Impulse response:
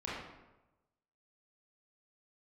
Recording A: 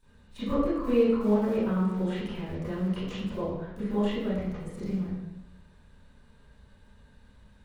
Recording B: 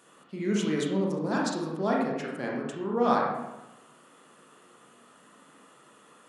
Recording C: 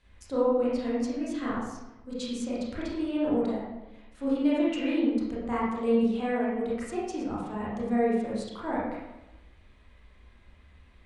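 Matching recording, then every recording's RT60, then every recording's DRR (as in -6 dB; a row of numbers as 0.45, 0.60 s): C; 1.0, 1.0, 1.0 s; -16.5, -2.5, -8.0 dB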